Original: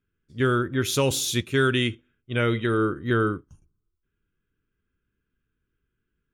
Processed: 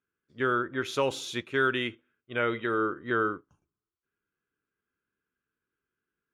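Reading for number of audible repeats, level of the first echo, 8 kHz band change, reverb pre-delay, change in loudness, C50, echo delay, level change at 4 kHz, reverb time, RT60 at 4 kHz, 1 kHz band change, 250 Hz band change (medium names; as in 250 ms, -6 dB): no echo, no echo, -14.5 dB, no reverb, -5.0 dB, no reverb, no echo, -8.0 dB, no reverb, no reverb, -0.5 dB, -7.5 dB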